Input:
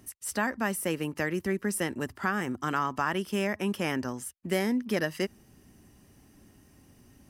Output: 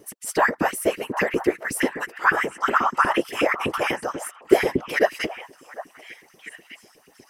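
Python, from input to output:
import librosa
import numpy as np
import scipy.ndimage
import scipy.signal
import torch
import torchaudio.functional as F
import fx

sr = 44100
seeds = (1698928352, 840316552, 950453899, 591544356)

y = fx.filter_lfo_highpass(x, sr, shape='saw_up', hz=8.2, low_hz=270.0, high_hz=2600.0, q=4.8)
y = fx.whisperise(y, sr, seeds[0])
y = fx.echo_stepped(y, sr, ms=751, hz=1000.0, octaves=1.4, feedback_pct=70, wet_db=-9)
y = y * 10.0 ** (3.5 / 20.0)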